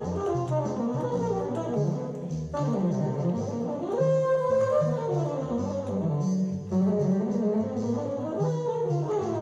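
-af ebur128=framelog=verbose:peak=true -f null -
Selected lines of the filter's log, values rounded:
Integrated loudness:
  I:         -27.6 LUFS
  Threshold: -37.6 LUFS
Loudness range:
  LRA:         2.2 LU
  Threshold: -47.3 LUFS
  LRA low:   -28.7 LUFS
  LRA high:  -26.5 LUFS
True peak:
  Peak:      -13.0 dBFS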